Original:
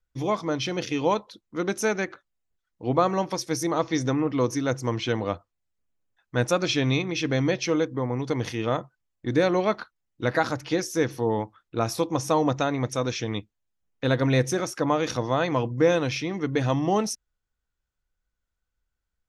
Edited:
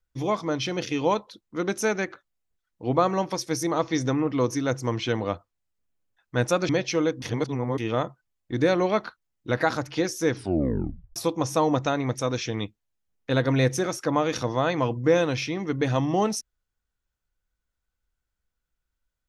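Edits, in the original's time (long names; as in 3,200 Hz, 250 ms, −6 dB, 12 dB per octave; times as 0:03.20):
0:06.69–0:07.43: remove
0:07.96–0:08.52: reverse
0:11.06: tape stop 0.84 s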